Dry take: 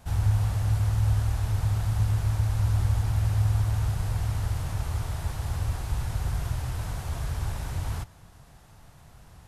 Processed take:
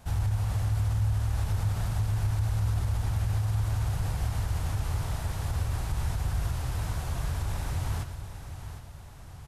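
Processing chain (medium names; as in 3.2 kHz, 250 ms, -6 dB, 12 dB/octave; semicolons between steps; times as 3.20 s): feedback delay 761 ms, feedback 43%, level -11 dB; peak limiter -21 dBFS, peak gain reduction 8 dB; on a send: delay 121 ms -11.5 dB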